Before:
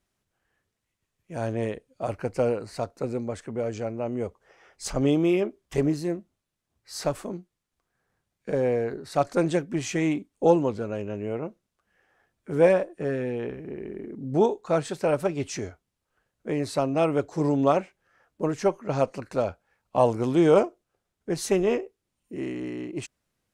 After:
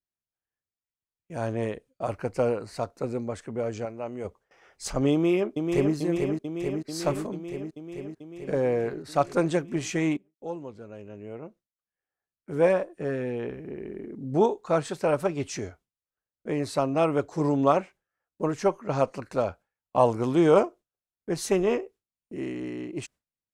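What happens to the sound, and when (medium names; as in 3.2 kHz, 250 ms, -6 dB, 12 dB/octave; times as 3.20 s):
3.85–4.25 s: bass shelf 470 Hz -8 dB
5.12–5.94 s: echo throw 440 ms, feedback 75%, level -4.5 dB
10.17–13.41 s: fade in, from -22 dB
whole clip: gate with hold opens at -47 dBFS; dynamic bell 1.1 kHz, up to +4 dB, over -41 dBFS, Q 2; trim -1 dB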